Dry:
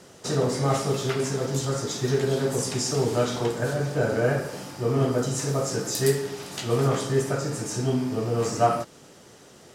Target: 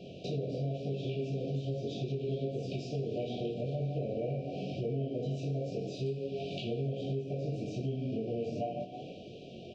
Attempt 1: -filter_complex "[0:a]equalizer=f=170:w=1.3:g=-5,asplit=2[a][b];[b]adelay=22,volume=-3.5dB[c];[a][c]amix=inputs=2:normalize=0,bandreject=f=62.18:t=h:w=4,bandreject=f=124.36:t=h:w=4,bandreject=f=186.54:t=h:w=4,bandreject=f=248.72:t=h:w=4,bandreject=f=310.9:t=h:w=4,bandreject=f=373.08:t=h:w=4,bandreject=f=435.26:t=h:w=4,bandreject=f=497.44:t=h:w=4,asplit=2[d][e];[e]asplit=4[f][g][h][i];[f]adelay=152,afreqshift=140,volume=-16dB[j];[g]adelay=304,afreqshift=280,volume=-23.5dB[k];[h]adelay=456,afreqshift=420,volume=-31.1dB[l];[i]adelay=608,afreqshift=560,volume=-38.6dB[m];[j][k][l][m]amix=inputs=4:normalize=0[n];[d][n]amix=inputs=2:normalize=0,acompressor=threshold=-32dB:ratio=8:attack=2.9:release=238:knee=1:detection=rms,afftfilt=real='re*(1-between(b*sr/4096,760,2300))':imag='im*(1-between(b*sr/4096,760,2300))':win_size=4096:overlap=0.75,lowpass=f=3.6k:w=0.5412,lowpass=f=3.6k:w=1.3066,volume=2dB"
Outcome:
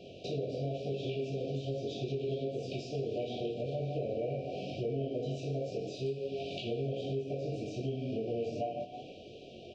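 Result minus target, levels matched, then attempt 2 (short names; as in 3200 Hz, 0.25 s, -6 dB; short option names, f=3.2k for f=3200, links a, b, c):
125 Hz band -3.0 dB
-filter_complex "[0:a]equalizer=f=170:w=1.3:g=3.5,asplit=2[a][b];[b]adelay=22,volume=-3.5dB[c];[a][c]amix=inputs=2:normalize=0,bandreject=f=62.18:t=h:w=4,bandreject=f=124.36:t=h:w=4,bandreject=f=186.54:t=h:w=4,bandreject=f=248.72:t=h:w=4,bandreject=f=310.9:t=h:w=4,bandreject=f=373.08:t=h:w=4,bandreject=f=435.26:t=h:w=4,bandreject=f=497.44:t=h:w=4,asplit=2[d][e];[e]asplit=4[f][g][h][i];[f]adelay=152,afreqshift=140,volume=-16dB[j];[g]adelay=304,afreqshift=280,volume=-23.5dB[k];[h]adelay=456,afreqshift=420,volume=-31.1dB[l];[i]adelay=608,afreqshift=560,volume=-38.6dB[m];[j][k][l][m]amix=inputs=4:normalize=0[n];[d][n]amix=inputs=2:normalize=0,acompressor=threshold=-32dB:ratio=8:attack=2.9:release=238:knee=1:detection=rms,afftfilt=real='re*(1-between(b*sr/4096,760,2300))':imag='im*(1-between(b*sr/4096,760,2300))':win_size=4096:overlap=0.75,lowpass=f=3.6k:w=0.5412,lowpass=f=3.6k:w=1.3066,volume=2dB"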